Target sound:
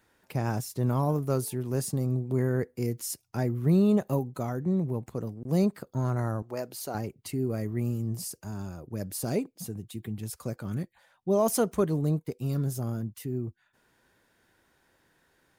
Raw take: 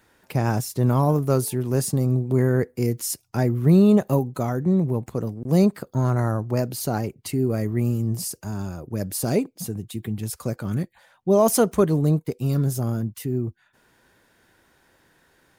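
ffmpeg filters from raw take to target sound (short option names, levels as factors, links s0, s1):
-filter_complex "[0:a]asettb=1/sr,asplit=3[s0][s1][s2];[s0]atrim=end=6.424[s3];[s1]atrim=start=6.42:end=6.95,asetpts=PTS-STARTPTS,afade=t=in:d=0.004:c=qsin,afade=t=out:st=0.526:d=0.004:c=qsin,bass=f=250:g=-15,treble=f=4000:g=-1[s4];[s2]atrim=start=6.946[s5];[s3][s4]acrossfade=d=0.004:c1=hsin:c2=qsin[s6];[s6][s5]acrossfade=d=0.004:c1=qsin:c2=hsin,volume=0.447"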